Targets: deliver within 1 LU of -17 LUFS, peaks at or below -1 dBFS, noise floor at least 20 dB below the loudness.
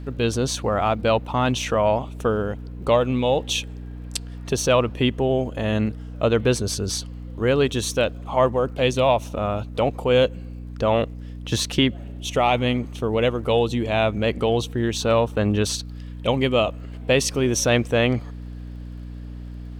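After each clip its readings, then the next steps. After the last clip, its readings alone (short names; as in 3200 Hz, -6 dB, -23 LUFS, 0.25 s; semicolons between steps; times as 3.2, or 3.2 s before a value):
ticks 28/s; hum 60 Hz; harmonics up to 300 Hz; hum level -33 dBFS; loudness -22.5 LUFS; peak -6.0 dBFS; loudness target -17.0 LUFS
-> de-click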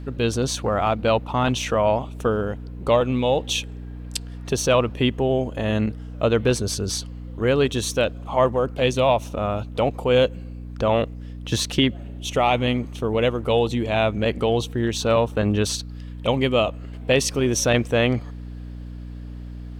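ticks 0.71/s; hum 60 Hz; harmonics up to 300 Hz; hum level -33 dBFS
-> de-hum 60 Hz, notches 5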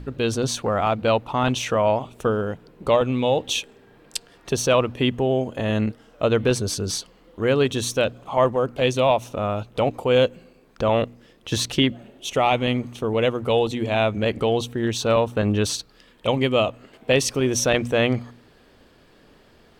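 hum none; loudness -22.5 LUFS; peak -5.5 dBFS; loudness target -17.0 LUFS
-> gain +5.5 dB; limiter -1 dBFS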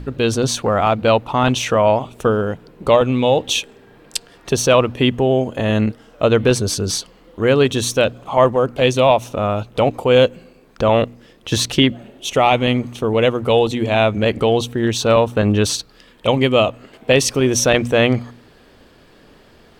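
loudness -17.0 LUFS; peak -1.0 dBFS; noise floor -49 dBFS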